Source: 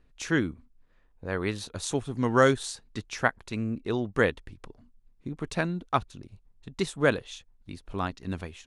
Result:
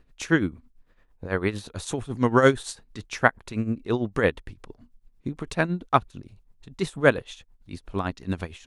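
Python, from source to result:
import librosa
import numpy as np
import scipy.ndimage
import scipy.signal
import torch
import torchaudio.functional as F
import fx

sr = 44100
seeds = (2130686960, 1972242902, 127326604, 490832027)

y = x * (1.0 - 0.72 / 2.0 + 0.72 / 2.0 * np.cos(2.0 * np.pi * 8.9 * (np.arange(len(x)) / sr)))
y = fx.dynamic_eq(y, sr, hz=5500.0, q=0.76, threshold_db=-50.0, ratio=4.0, max_db=-5)
y = y * 10.0 ** (6.5 / 20.0)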